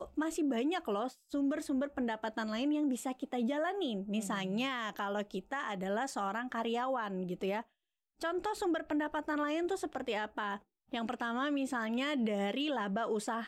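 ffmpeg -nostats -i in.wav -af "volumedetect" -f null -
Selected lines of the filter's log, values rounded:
mean_volume: -35.4 dB
max_volume: -26.0 dB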